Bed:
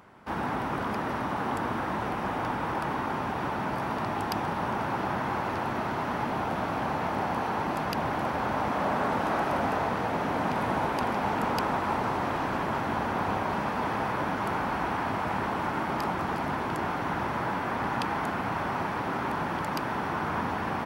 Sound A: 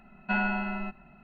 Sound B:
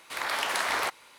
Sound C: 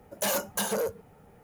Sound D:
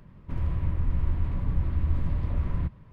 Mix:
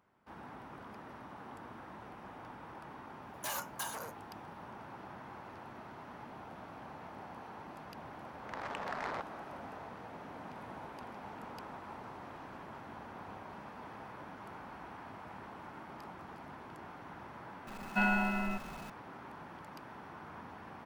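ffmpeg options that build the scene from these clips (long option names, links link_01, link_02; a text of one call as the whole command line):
ffmpeg -i bed.wav -i cue0.wav -i cue1.wav -i cue2.wav -filter_complex "[0:a]volume=-19dB[link_01];[3:a]highpass=frequency=1000:width_type=q:width=1.9[link_02];[2:a]adynamicsmooth=sensitivity=1:basefreq=530[link_03];[1:a]aeval=exprs='val(0)+0.5*0.00708*sgn(val(0))':channel_layout=same[link_04];[link_02]atrim=end=1.43,asetpts=PTS-STARTPTS,volume=-11dB,afade=type=in:duration=0.004:curve=hsin,afade=type=out:start_time=1.426:duration=0.004:curve=hsin,adelay=3220[link_05];[link_03]atrim=end=1.18,asetpts=PTS-STARTPTS,volume=-7dB,afade=type=in:duration=0.004:curve=hsin,afade=type=out:start_time=1.176:duration=0.004:curve=hsin,adelay=8320[link_06];[link_04]atrim=end=1.23,asetpts=PTS-STARTPTS,volume=-2.5dB,afade=type=in:duration=0.004:curve=hsin,afade=type=out:start_time=1.226:duration=0.004:curve=hsin,adelay=17670[link_07];[link_01][link_05][link_06][link_07]amix=inputs=4:normalize=0" out.wav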